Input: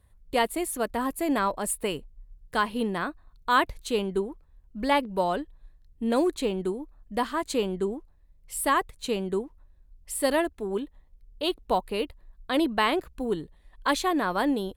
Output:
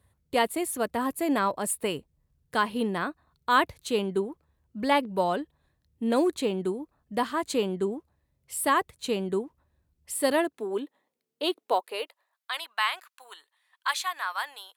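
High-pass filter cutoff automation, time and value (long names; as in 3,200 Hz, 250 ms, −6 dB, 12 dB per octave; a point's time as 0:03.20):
high-pass filter 24 dB per octave
0:10.21 74 Hz
0:10.66 250 Hz
0:11.44 250 Hz
0:12.56 1,000 Hz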